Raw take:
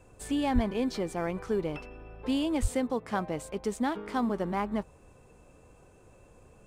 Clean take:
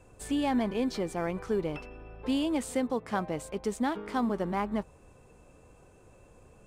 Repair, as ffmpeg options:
-filter_complex "[0:a]asplit=3[s0][s1][s2];[s0]afade=t=out:st=0.54:d=0.02[s3];[s1]highpass=f=140:w=0.5412,highpass=f=140:w=1.3066,afade=t=in:st=0.54:d=0.02,afade=t=out:st=0.66:d=0.02[s4];[s2]afade=t=in:st=0.66:d=0.02[s5];[s3][s4][s5]amix=inputs=3:normalize=0,asplit=3[s6][s7][s8];[s6]afade=t=out:st=2.61:d=0.02[s9];[s7]highpass=f=140:w=0.5412,highpass=f=140:w=1.3066,afade=t=in:st=2.61:d=0.02,afade=t=out:st=2.73:d=0.02[s10];[s8]afade=t=in:st=2.73:d=0.02[s11];[s9][s10][s11]amix=inputs=3:normalize=0"

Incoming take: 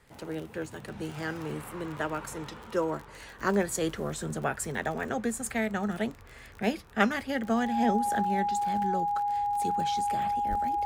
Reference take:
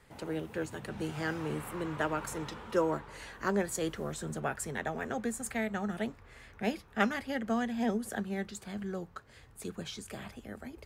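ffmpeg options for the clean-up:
-filter_complex "[0:a]adeclick=t=4,bandreject=f=820:w=30,asplit=3[s0][s1][s2];[s0]afade=t=out:st=10.49:d=0.02[s3];[s1]highpass=f=140:w=0.5412,highpass=f=140:w=1.3066,afade=t=in:st=10.49:d=0.02,afade=t=out:st=10.61:d=0.02[s4];[s2]afade=t=in:st=10.61:d=0.02[s5];[s3][s4][s5]amix=inputs=3:normalize=0,asetnsamples=n=441:p=0,asendcmd='3.39 volume volume -4dB',volume=1"

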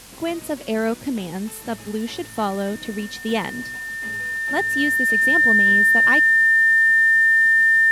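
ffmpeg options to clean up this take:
-af "adeclick=t=4,bandreject=f=47.2:t=h:w=4,bandreject=f=94.4:t=h:w=4,bandreject=f=141.6:t=h:w=4,bandreject=f=188.8:t=h:w=4,bandreject=f=236:t=h:w=4,bandreject=f=1800:w=30,afwtdn=0.0079"

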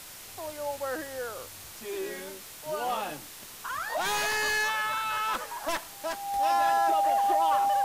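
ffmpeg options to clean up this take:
-af "adeclick=t=4,bandreject=f=800:w=30,afwtdn=0.0063"

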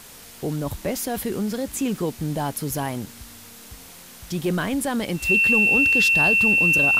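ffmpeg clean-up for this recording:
-af "bandreject=f=2700:w=30,afwtdn=0.0071"

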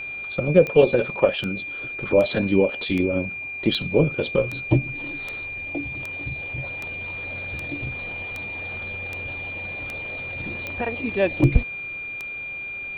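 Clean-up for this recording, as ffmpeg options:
-af "adeclick=t=4,bandreject=f=388.7:t=h:w=4,bandreject=f=777.4:t=h:w=4,bandreject=f=1166.1:t=h:w=4,bandreject=f=1554.8:t=h:w=4,bandreject=f=1943.5:t=h:w=4,bandreject=f=2332.2:t=h:w=4,bandreject=f=2400:w=30"

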